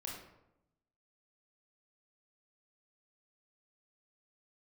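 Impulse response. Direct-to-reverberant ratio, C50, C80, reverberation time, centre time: -2.5 dB, 2.5 dB, 5.5 dB, 0.85 s, 49 ms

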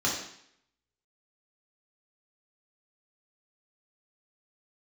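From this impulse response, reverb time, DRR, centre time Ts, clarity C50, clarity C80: 0.65 s, -4.5 dB, 41 ms, 3.5 dB, 7.0 dB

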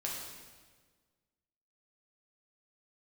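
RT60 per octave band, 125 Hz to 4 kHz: 1.8 s, 1.7 s, 1.6 s, 1.4 s, 1.4 s, 1.3 s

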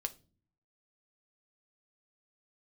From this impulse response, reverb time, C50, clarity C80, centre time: 0.35 s, 19.0 dB, 25.5 dB, 3 ms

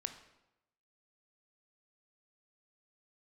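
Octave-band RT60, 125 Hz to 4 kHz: 0.95 s, 0.95 s, 0.95 s, 0.90 s, 0.80 s, 0.70 s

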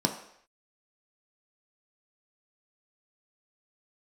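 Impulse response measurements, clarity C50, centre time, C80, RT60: 9.0 dB, 18 ms, 11.5 dB, no single decay rate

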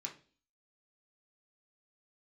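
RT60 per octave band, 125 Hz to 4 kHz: 0.45 s, 0.55 s, 0.45 s, 0.35 s, 0.40 s, 0.45 s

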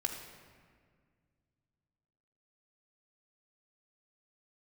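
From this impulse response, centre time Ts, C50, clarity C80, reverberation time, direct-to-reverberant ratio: 42 ms, 5.0 dB, 6.5 dB, 1.9 s, 3.0 dB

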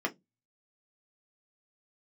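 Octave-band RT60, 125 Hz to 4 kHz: 0.40 s, 0.30 s, 0.20 s, 0.10 s, 0.10 s, 0.15 s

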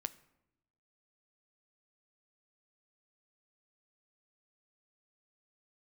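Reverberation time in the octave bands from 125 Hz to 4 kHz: 1.2 s, 1.1 s, 0.95 s, 0.80 s, 0.70 s, 0.55 s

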